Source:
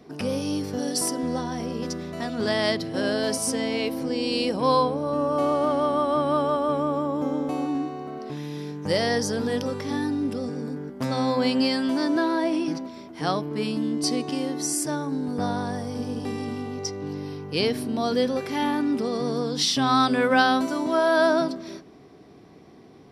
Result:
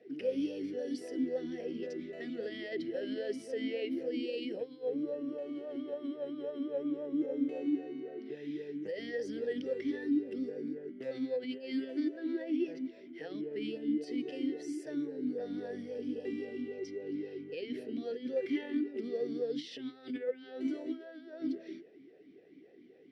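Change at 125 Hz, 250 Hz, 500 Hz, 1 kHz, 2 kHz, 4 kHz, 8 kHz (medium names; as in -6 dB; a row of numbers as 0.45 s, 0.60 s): -23.0 dB, -9.5 dB, -11.5 dB, -31.5 dB, -18.0 dB, -20.0 dB, under -25 dB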